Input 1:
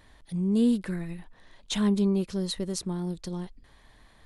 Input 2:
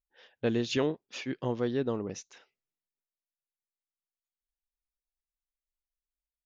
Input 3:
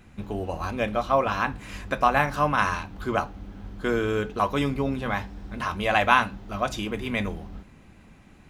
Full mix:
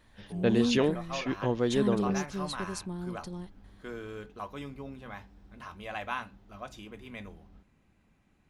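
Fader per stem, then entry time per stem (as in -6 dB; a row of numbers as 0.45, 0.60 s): -6.0, +2.5, -16.0 dB; 0.00, 0.00, 0.00 s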